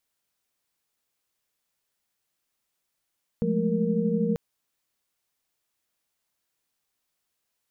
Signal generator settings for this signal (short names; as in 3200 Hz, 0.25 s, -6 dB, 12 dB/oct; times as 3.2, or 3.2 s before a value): chord F3/G#3/A3/A#4 sine, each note -27.5 dBFS 0.94 s